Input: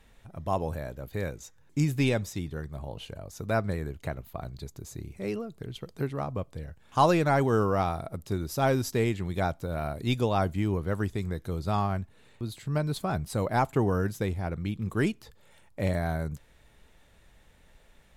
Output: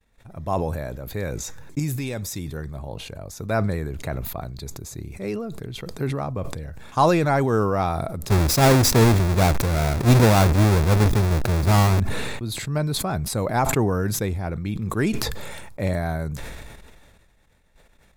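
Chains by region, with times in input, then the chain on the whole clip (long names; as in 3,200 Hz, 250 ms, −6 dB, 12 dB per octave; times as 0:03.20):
0:01.79–0:02.57: high-shelf EQ 7,400 Hz +10.5 dB + downward compressor 5 to 1, threshold −29 dBFS
0:08.28–0:12.00: each half-wave held at its own peak + low-shelf EQ 430 Hz +3.5 dB
whole clip: downward expander −49 dBFS; notch filter 3,000 Hz, Q 8.6; level that may fall only so fast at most 30 dB per second; level +3.5 dB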